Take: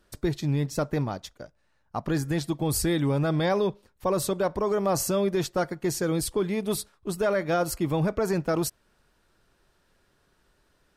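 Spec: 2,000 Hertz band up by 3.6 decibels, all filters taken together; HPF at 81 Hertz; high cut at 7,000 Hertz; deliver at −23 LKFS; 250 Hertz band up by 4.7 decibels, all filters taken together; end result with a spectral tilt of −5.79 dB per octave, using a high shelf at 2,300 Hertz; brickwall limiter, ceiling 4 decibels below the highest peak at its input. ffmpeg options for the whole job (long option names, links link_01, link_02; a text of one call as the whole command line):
ffmpeg -i in.wav -af "highpass=81,lowpass=7000,equalizer=frequency=250:width_type=o:gain=7.5,equalizer=frequency=2000:width_type=o:gain=7,highshelf=frequency=2300:gain=-5,volume=3.5dB,alimiter=limit=-12.5dB:level=0:latency=1" out.wav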